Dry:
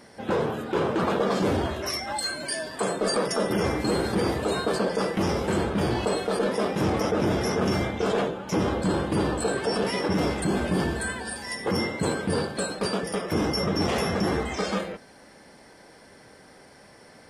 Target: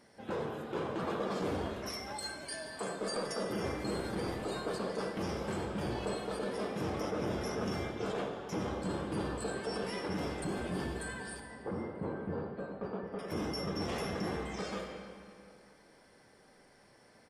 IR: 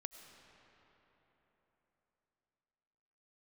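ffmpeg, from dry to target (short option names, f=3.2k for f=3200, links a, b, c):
-filter_complex "[0:a]asettb=1/sr,asplit=3[a][b][c];[a]atrim=end=11.404[d];[b]atrim=start=11.4:end=13.19,asetpts=PTS-STARTPTS,afade=t=in:d=0.004:c=qsin,afade=t=out:st=1.786:d=0.004:c=qsin,lowpass=1.2k[e];[c]atrim=start=13.186[f];[d][e]acrossfade=d=0.004:c1=hsin:c2=qsin[g];[g][f]acrossfade=d=0.004:c1=qsin:c2=hsin,aecho=1:1:234|468|702|936:0.0668|0.0361|0.0195|0.0105[h];[1:a]atrim=start_sample=2205,asetrate=79380,aresample=44100[i];[h][i]afir=irnorm=-1:irlink=0,volume=-2dB"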